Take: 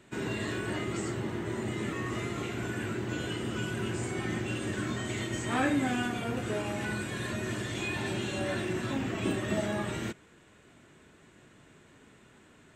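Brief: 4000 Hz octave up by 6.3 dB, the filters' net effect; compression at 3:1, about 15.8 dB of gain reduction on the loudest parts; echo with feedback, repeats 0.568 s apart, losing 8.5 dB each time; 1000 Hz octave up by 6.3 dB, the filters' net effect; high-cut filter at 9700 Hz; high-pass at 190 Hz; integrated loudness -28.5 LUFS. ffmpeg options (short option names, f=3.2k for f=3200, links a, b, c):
-af "highpass=190,lowpass=9.7k,equalizer=f=1k:t=o:g=8,equalizer=f=4k:t=o:g=8,acompressor=threshold=-44dB:ratio=3,aecho=1:1:568|1136|1704|2272:0.376|0.143|0.0543|0.0206,volume=13.5dB"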